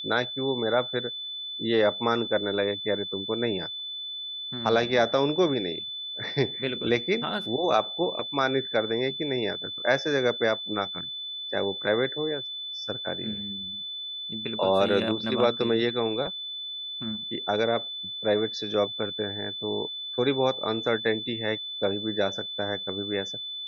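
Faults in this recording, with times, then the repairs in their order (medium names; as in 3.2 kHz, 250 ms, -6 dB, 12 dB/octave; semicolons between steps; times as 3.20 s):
whine 3.5 kHz -33 dBFS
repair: band-stop 3.5 kHz, Q 30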